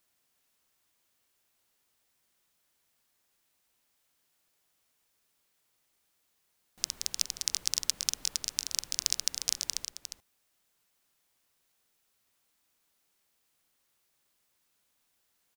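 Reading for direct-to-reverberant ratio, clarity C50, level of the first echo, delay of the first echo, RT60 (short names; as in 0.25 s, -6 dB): none, none, -9.0 dB, 0.355 s, none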